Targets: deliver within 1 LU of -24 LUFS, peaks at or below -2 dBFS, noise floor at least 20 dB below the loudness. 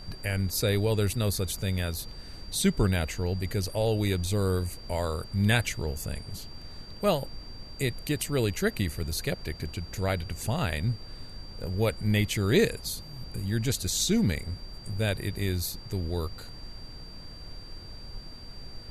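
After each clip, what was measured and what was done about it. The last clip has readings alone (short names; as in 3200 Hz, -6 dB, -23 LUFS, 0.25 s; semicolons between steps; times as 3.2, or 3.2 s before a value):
steady tone 4700 Hz; tone level -47 dBFS; noise floor -44 dBFS; noise floor target -49 dBFS; loudness -29.0 LUFS; peak -10.5 dBFS; loudness target -24.0 LUFS
-> notch 4700 Hz, Q 30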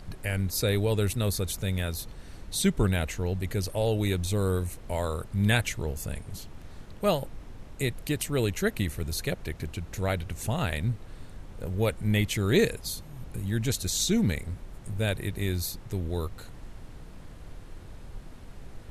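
steady tone none; noise floor -46 dBFS; noise floor target -49 dBFS
-> noise print and reduce 6 dB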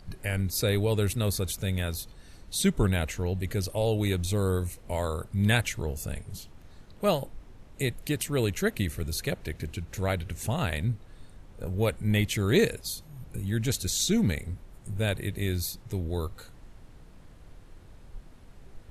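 noise floor -51 dBFS; loudness -29.0 LUFS; peak -11.0 dBFS; loudness target -24.0 LUFS
-> gain +5 dB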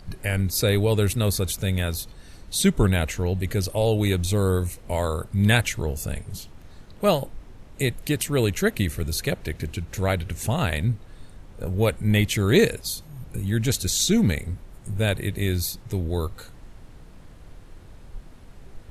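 loudness -24.0 LUFS; peak -6.0 dBFS; noise floor -46 dBFS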